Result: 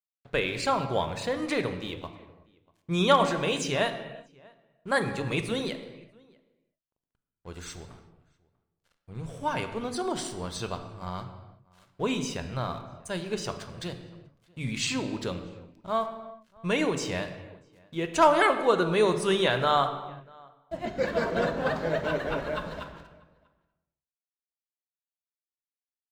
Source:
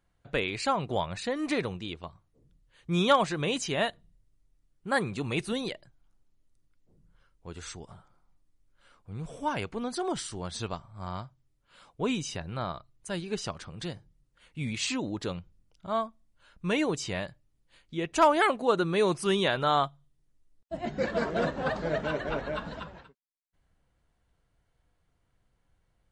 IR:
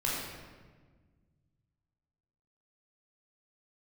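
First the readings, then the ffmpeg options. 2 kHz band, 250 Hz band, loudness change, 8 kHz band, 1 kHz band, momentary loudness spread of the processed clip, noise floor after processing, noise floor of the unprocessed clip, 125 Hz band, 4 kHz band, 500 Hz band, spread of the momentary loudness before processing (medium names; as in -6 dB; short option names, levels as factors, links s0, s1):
+2.0 dB, +0.5 dB, +2.0 dB, +1.0 dB, +2.0 dB, 20 LU, under -85 dBFS, -73 dBFS, +1.5 dB, +1.5 dB, +2.5 dB, 18 LU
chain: -filter_complex "[0:a]bandreject=f=50:t=h:w=6,bandreject=f=100:t=h:w=6,bandreject=f=150:t=h:w=6,bandreject=f=200:t=h:w=6,bandreject=f=250:t=h:w=6,bandreject=f=300:t=h:w=6,aeval=exprs='sgn(val(0))*max(abs(val(0))-0.00178,0)':c=same,asplit=2[s0][s1];[s1]adelay=641.4,volume=0.0501,highshelf=f=4000:g=-14.4[s2];[s0][s2]amix=inputs=2:normalize=0,asplit=2[s3][s4];[1:a]atrim=start_sample=2205,afade=t=out:st=0.44:d=0.01,atrim=end_sample=19845[s5];[s4][s5]afir=irnorm=-1:irlink=0,volume=0.237[s6];[s3][s6]amix=inputs=2:normalize=0"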